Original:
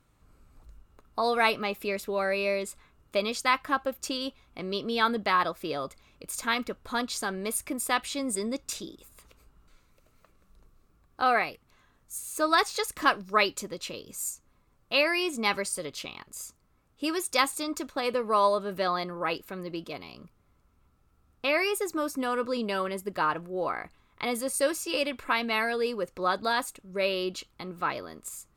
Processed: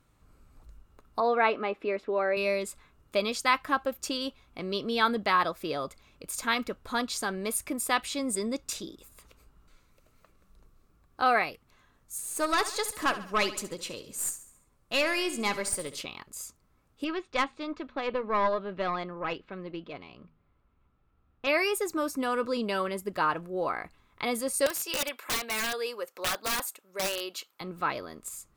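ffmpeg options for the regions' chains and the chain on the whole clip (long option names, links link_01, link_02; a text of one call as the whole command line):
ffmpeg -i in.wav -filter_complex "[0:a]asettb=1/sr,asplit=3[link_01][link_02][link_03];[link_01]atrim=end=1.204[link_04];[link_02]atrim=start=1.2:end=2.37,asetpts=PTS-STARTPTS,afade=type=in:duration=0.004:curve=qsin,afade=type=out:start_time=1.166:duration=0.004:curve=qsin,lowpass=2100,lowshelf=frequency=200:width_type=q:width=1.5:gain=-10.5[link_05];[link_03]atrim=start=2.366[link_06];[link_04][link_05]acrossfade=duration=0.004:curve1=hsin:curve2=qsin[link_07];[link_07][link_06]acrossfade=duration=0.004:curve1=qsin:curve2=hsin,asettb=1/sr,asplit=3[link_08][link_09][link_10];[link_08]atrim=end=12.194[link_11];[link_09]atrim=start=12.19:end=16.01,asetpts=PTS-STARTPTS,afade=type=in:duration=0.004:curve=qsin,afade=type=out:start_time=3.816:duration=0.004:curve=qsin,equalizer=frequency=9100:width_type=o:width=0.69:gain=5,aeval=exprs='(tanh(8.91*val(0)+0.4)-tanh(0.4))/8.91':channel_layout=same,aecho=1:1:69|138|207|276|345:0.2|0.0978|0.0479|0.0235|0.0115,atrim=end_sample=168462[link_12];[link_10]atrim=start=16.006[link_13];[link_11][link_12]acrossfade=duration=0.004:curve1=hsin:curve2=qsin[link_14];[link_14][link_13]acrossfade=duration=0.004:curve1=qsin:curve2=hsin,asettb=1/sr,asplit=3[link_15][link_16][link_17];[link_15]atrim=end=17.044[link_18];[link_16]atrim=start=17.04:end=21.47,asetpts=PTS-STARTPTS,afade=type=in:duration=0.004:curve=qsin,afade=type=out:start_time=4.426:duration=0.004:curve=qsin,lowpass=frequency=3500:width=0.5412,lowpass=frequency=3500:width=1.3066,bandreject=frequency=79.98:width_type=h:width=4,bandreject=frequency=159.96:width_type=h:width=4,bandreject=frequency=239.94:width_type=h:width=4,aeval=exprs='(tanh(6.31*val(0)+0.6)-tanh(0.6))/6.31':channel_layout=same[link_19];[link_17]atrim=start=21.466[link_20];[link_18][link_19]acrossfade=duration=0.004:curve1=hsin:curve2=qsin[link_21];[link_21][link_20]acrossfade=duration=0.004:curve1=qsin:curve2=hsin,asettb=1/sr,asplit=3[link_22][link_23][link_24];[link_22]atrim=end=24.664[link_25];[link_23]atrim=start=24.66:end=27.61,asetpts=PTS-STARTPTS,afade=type=in:duration=0.004:curve=qsin,afade=type=out:start_time=2.946:duration=0.004:curve=qsin,highpass=570,equalizer=frequency=14000:width_type=o:width=0.33:gain=13,aeval=exprs='(mod(14.1*val(0)+1,2)-1)/14.1':channel_layout=same[link_26];[link_24]atrim=start=27.606[link_27];[link_25][link_26]acrossfade=duration=0.004:curve1=hsin:curve2=qsin[link_28];[link_28][link_27]acrossfade=duration=0.004:curve1=qsin:curve2=hsin" out.wav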